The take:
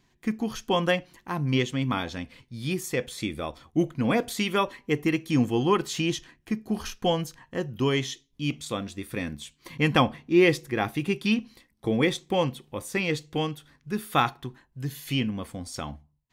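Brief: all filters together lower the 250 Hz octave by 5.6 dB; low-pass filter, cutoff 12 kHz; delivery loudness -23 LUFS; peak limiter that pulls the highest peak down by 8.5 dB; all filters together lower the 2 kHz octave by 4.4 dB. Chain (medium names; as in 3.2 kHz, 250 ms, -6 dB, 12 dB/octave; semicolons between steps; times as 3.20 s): low-pass 12 kHz; peaking EQ 250 Hz -8 dB; peaking EQ 2 kHz -5.5 dB; trim +10 dB; peak limiter -9 dBFS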